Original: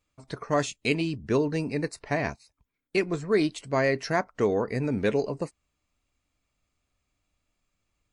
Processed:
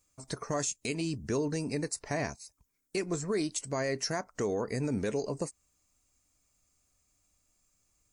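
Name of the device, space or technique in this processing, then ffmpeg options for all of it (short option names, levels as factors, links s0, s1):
over-bright horn tweeter: -af "highshelf=f=4700:t=q:w=1.5:g=11,alimiter=limit=0.075:level=0:latency=1:release=178"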